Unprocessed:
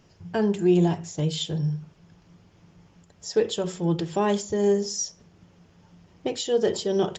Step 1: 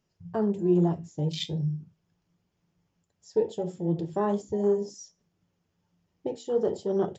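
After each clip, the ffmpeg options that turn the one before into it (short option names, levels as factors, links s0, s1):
-af "afwtdn=0.0316,highshelf=f=6800:g=7.5,flanger=delay=4.6:depth=9.9:regen=-68:speed=0.39:shape=triangular,volume=1.12"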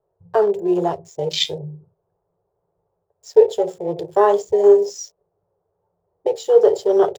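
-filter_complex "[0:a]firequalizer=gain_entry='entry(120,0);entry(250,-18);entry(400,14)':delay=0.05:min_phase=1,acrossover=split=520|880[s0][s1][s2];[s2]aeval=exprs='sgn(val(0))*max(abs(val(0))-0.00447,0)':c=same[s3];[s0][s1][s3]amix=inputs=3:normalize=0"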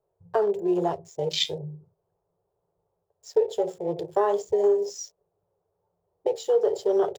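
-af "acompressor=threshold=0.2:ratio=4,volume=0.596"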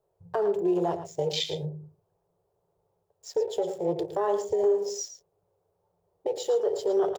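-filter_complex "[0:a]alimiter=limit=0.1:level=0:latency=1:release=165,asplit=2[s0][s1];[s1]adelay=110.8,volume=0.316,highshelf=f=4000:g=-2.49[s2];[s0][s2]amix=inputs=2:normalize=0,volume=1.26"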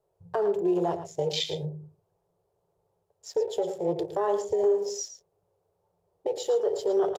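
-af "aresample=32000,aresample=44100"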